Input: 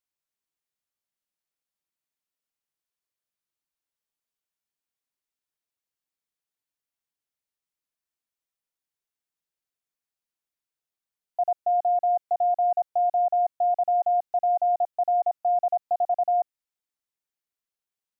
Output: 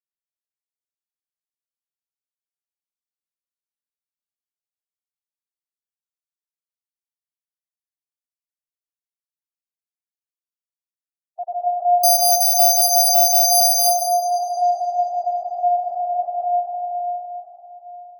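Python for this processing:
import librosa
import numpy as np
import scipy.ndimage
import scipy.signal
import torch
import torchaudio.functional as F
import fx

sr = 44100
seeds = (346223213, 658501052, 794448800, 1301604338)

y = fx.bin_expand(x, sr, power=3.0)
y = fx.resample_bad(y, sr, factor=8, down='filtered', up='zero_stuff', at=(12.03, 13.77))
y = fx.rev_freeverb(y, sr, rt60_s=3.9, hf_ratio=0.75, predelay_ms=100, drr_db=-6.0)
y = F.gain(torch.from_numpy(y), -2.5).numpy()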